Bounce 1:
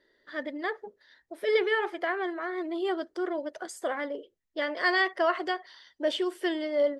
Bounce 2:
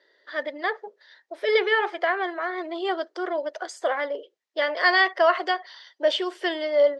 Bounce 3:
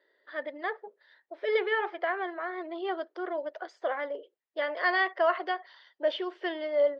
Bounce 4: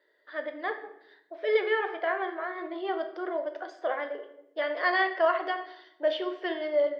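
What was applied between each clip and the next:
Chebyshev band-pass filter 540–5,400 Hz, order 2; level +7 dB
high-frequency loss of the air 250 metres; level −5 dB
rectangular room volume 220 cubic metres, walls mixed, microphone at 0.51 metres

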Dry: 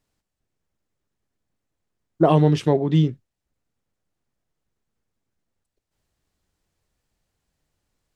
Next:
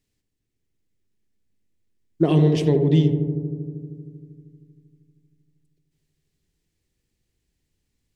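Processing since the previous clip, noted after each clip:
flat-topped bell 900 Hz −11 dB
on a send: feedback echo with a low-pass in the loop 78 ms, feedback 85%, low-pass 1,300 Hz, level −7 dB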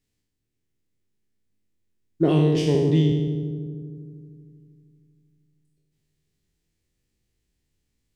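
peak hold with a decay on every bin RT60 1.00 s
level −3.5 dB

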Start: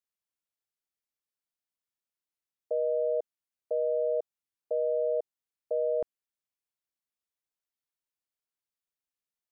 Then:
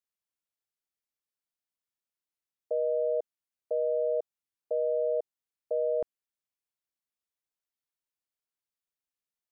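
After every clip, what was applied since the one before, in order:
no processing that can be heard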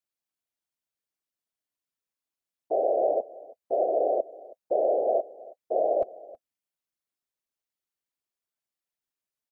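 hollow resonant body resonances 260/620 Hz, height 6 dB, ringing for 60 ms
random phases in short frames
single-tap delay 322 ms −20.5 dB

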